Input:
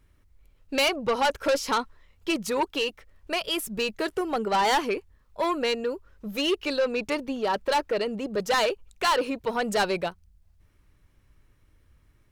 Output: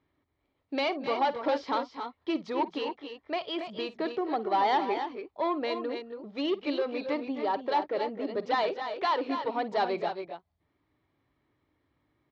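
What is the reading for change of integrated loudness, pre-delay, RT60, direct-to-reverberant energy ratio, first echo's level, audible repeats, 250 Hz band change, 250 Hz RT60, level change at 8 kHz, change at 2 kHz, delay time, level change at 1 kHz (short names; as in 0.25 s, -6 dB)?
-4.0 dB, none, none, none, -17.0 dB, 2, -2.5 dB, none, under -20 dB, -8.0 dB, 52 ms, -1.5 dB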